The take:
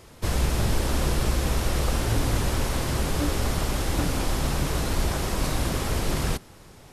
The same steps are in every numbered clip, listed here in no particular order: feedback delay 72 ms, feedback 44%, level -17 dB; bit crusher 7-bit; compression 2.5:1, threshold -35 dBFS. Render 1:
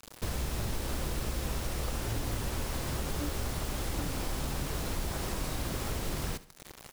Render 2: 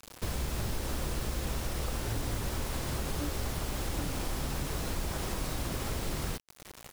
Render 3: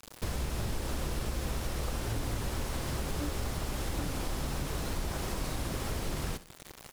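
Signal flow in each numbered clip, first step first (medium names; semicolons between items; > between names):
compression > bit crusher > feedback delay; compression > feedback delay > bit crusher; bit crusher > compression > feedback delay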